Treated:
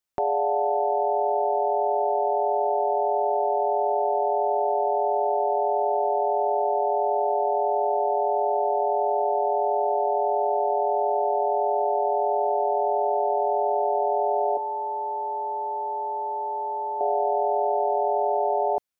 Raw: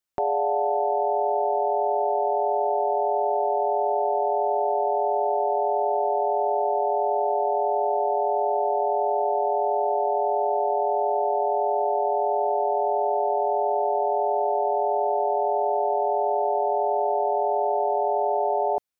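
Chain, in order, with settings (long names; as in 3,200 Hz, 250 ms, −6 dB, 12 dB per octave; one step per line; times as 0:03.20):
0:14.57–0:17.01: pair of resonant band-passes 670 Hz, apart 0.78 octaves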